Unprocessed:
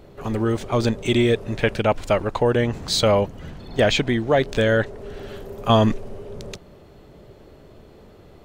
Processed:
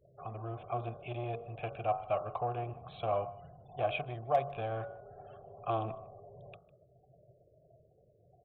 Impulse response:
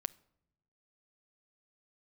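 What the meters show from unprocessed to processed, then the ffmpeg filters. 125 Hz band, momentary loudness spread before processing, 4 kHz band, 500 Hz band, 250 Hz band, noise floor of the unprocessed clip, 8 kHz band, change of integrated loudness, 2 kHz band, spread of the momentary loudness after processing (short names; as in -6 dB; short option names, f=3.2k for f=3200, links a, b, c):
-17.0 dB, 18 LU, -26.0 dB, -16.0 dB, -25.0 dB, -48 dBFS, under -40 dB, -16.0 dB, -20.5 dB, 19 LU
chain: -filter_complex "[0:a]aemphasis=mode=reproduction:type=50fm,afftfilt=real='re*gte(hypot(re,im),0.0112)':imag='im*gte(hypot(re,im),0.0112)':win_size=1024:overlap=0.75,lowshelf=f=180:t=q:w=3:g=11,bandreject=f=46.98:t=h:w=4,bandreject=f=93.96:t=h:w=4,bandreject=f=140.94:t=h:w=4,bandreject=f=187.92:t=h:w=4,bandreject=f=234.9:t=h:w=4,bandreject=f=281.88:t=h:w=4,bandreject=f=328.86:t=h:w=4,bandreject=f=375.84:t=h:w=4,bandreject=f=422.82:t=h:w=4,bandreject=f=469.8:t=h:w=4,bandreject=f=516.78:t=h:w=4,bandreject=f=563.76:t=h:w=4,bandreject=f=610.74:t=h:w=4,bandreject=f=657.72:t=h:w=4,bandreject=f=704.7:t=h:w=4,bandreject=f=751.68:t=h:w=4,bandreject=f=798.66:t=h:w=4,bandreject=f=845.64:t=h:w=4,bandreject=f=892.62:t=h:w=4,bandreject=f=939.6:t=h:w=4,bandreject=f=986.58:t=h:w=4,bandreject=f=1.03356k:t=h:w=4,bandreject=f=1.08054k:t=h:w=4,bandreject=f=1.12752k:t=h:w=4,bandreject=f=1.1745k:t=h:w=4,bandreject=f=1.22148k:t=h:w=4,bandreject=f=1.26846k:t=h:w=4,bandreject=f=1.31544k:t=h:w=4,bandreject=f=1.36242k:t=h:w=4,bandreject=f=1.4094k:t=h:w=4,bandreject=f=1.45638k:t=h:w=4,bandreject=f=1.50336k:t=h:w=4,aresample=8000,asoftclip=type=tanh:threshold=-8dB,aresample=44100,asplit=3[a][b][c];[a]bandpass=f=730:t=q:w=8,volume=0dB[d];[b]bandpass=f=1.09k:t=q:w=8,volume=-6dB[e];[c]bandpass=f=2.44k:t=q:w=8,volume=-9dB[f];[d][e][f]amix=inputs=3:normalize=0,asoftclip=type=hard:threshold=-19dB,asplit=2[g][h];[h]aecho=0:1:153:0.0794[i];[g][i]amix=inputs=2:normalize=0"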